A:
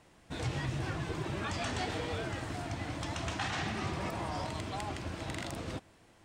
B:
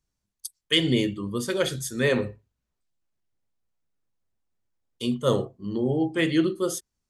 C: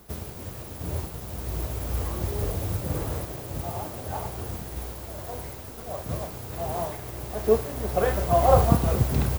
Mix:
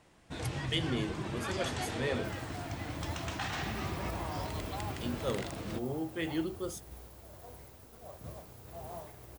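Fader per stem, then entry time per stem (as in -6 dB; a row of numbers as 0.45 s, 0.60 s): -1.5 dB, -12.0 dB, -14.5 dB; 0.00 s, 0.00 s, 2.15 s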